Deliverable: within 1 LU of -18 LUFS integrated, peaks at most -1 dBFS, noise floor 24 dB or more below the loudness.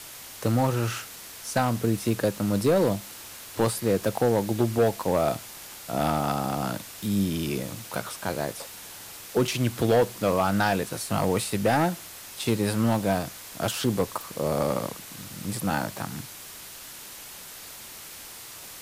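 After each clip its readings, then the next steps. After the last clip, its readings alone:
clipped 0.8%; flat tops at -15.0 dBFS; noise floor -43 dBFS; noise floor target -51 dBFS; loudness -26.5 LUFS; peak -15.0 dBFS; loudness target -18.0 LUFS
-> clip repair -15 dBFS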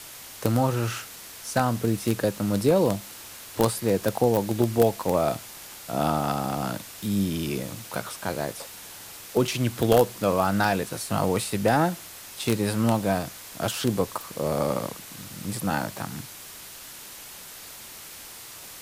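clipped 0.0%; noise floor -43 dBFS; noise floor target -50 dBFS
-> denoiser 7 dB, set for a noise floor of -43 dBFS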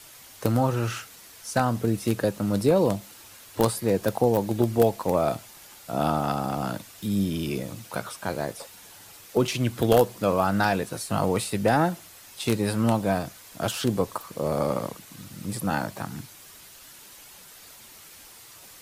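noise floor -48 dBFS; noise floor target -50 dBFS
-> denoiser 6 dB, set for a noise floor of -48 dBFS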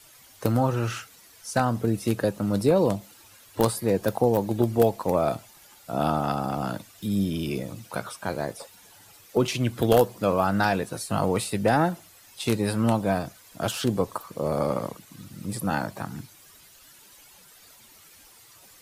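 noise floor -53 dBFS; loudness -26.0 LUFS; peak -6.0 dBFS; loudness target -18.0 LUFS
-> gain +8 dB; limiter -1 dBFS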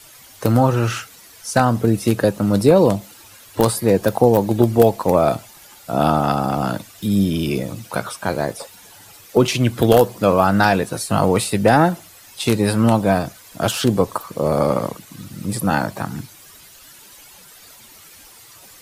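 loudness -18.5 LUFS; peak -1.0 dBFS; noise floor -45 dBFS

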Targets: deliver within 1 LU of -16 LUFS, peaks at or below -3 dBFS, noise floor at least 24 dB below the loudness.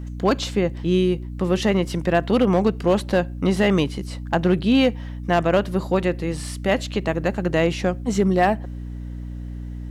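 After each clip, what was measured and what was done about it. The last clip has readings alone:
clipped 0.9%; flat tops at -10.0 dBFS; hum 60 Hz; harmonics up to 300 Hz; hum level -29 dBFS; loudness -21.5 LUFS; peak -10.0 dBFS; loudness target -16.0 LUFS
-> clip repair -10 dBFS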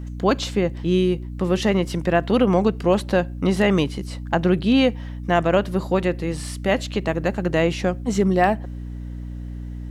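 clipped 0.0%; hum 60 Hz; harmonics up to 300 Hz; hum level -29 dBFS
-> de-hum 60 Hz, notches 5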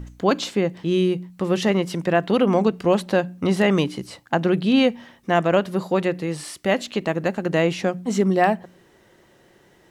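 hum none; loudness -21.5 LUFS; peak -6.0 dBFS; loudness target -16.0 LUFS
-> gain +5.5 dB; limiter -3 dBFS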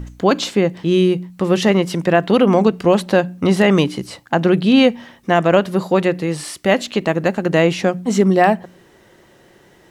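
loudness -16.5 LUFS; peak -3.0 dBFS; noise floor -50 dBFS

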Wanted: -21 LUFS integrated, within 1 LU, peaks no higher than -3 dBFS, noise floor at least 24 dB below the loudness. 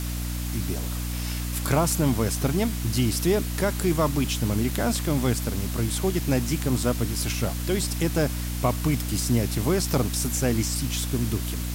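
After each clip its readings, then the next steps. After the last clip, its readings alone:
hum 60 Hz; harmonics up to 300 Hz; hum level -27 dBFS; noise floor -30 dBFS; noise floor target -50 dBFS; loudness -25.5 LUFS; peak -9.5 dBFS; loudness target -21.0 LUFS
-> de-hum 60 Hz, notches 5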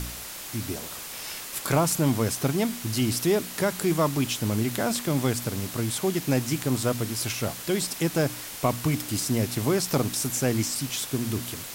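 hum none; noise floor -38 dBFS; noise floor target -51 dBFS
-> noise print and reduce 13 dB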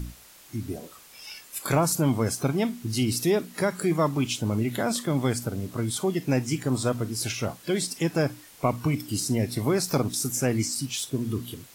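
noise floor -51 dBFS; loudness -27.0 LUFS; peak -10.0 dBFS; loudness target -21.0 LUFS
-> gain +6 dB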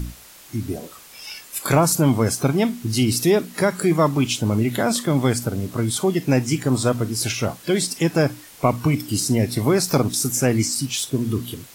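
loudness -21.0 LUFS; peak -4.0 dBFS; noise floor -45 dBFS

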